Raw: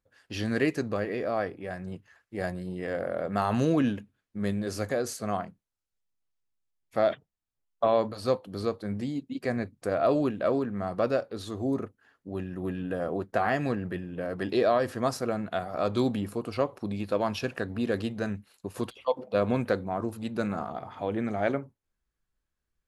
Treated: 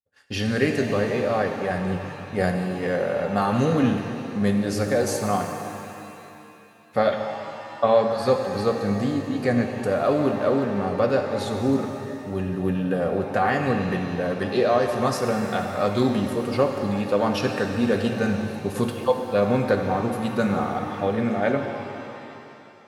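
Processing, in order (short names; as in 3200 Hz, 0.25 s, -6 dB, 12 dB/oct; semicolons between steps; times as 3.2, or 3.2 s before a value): expander -54 dBFS; in parallel at +0.5 dB: vocal rider 0.5 s; on the sum: notch comb 330 Hz; shimmer reverb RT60 2.7 s, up +7 st, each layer -8 dB, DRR 4.5 dB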